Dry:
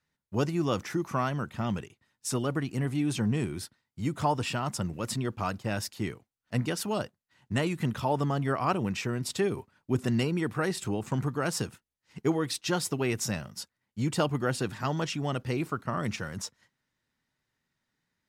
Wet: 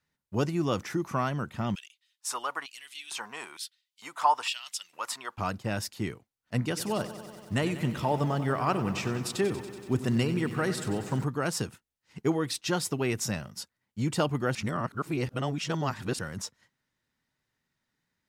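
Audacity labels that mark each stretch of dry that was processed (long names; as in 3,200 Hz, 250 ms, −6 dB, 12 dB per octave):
1.750000	5.380000	auto-filter high-pass square 1.1 Hz 960–3,200 Hz
6.610000	11.240000	feedback echo at a low word length 94 ms, feedback 80%, word length 9 bits, level −13 dB
14.550000	16.190000	reverse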